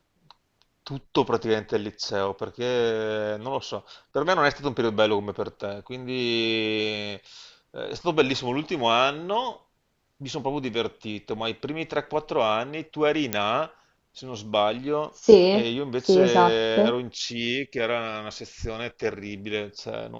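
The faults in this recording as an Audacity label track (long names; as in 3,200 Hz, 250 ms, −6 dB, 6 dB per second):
13.330000	13.330000	click −6 dBFS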